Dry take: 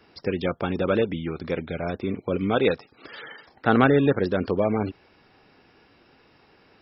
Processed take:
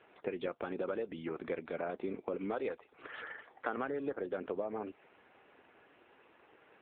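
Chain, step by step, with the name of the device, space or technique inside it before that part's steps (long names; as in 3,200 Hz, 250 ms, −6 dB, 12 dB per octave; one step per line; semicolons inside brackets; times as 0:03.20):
voicemail (band-pass filter 350–2,900 Hz; downward compressor 8 to 1, threshold −31 dBFS, peak gain reduction 16.5 dB; level −2 dB; AMR narrowband 7.95 kbit/s 8,000 Hz)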